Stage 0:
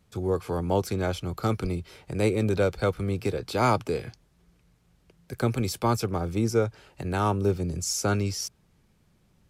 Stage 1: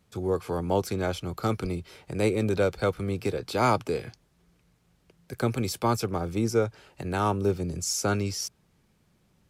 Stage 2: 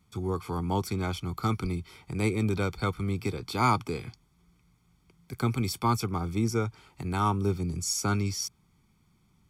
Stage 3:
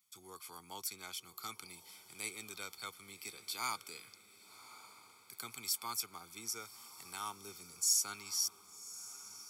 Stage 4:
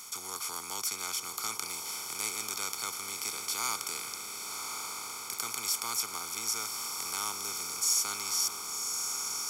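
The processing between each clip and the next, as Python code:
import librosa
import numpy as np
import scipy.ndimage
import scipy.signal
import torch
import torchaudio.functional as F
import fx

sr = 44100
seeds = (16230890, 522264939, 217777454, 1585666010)

y1 = fx.low_shelf(x, sr, hz=86.0, db=-6.5)
y2 = y1 + 0.71 * np.pad(y1, (int(0.9 * sr / 1000.0), 0))[:len(y1)]
y2 = y2 * 10.0 ** (-3.0 / 20.0)
y3 = np.diff(y2, prepend=0.0)
y3 = fx.echo_diffused(y3, sr, ms=1115, feedback_pct=54, wet_db=-15)
y3 = y3 * 10.0 ** (1.0 / 20.0)
y4 = fx.bin_compress(y3, sr, power=0.4)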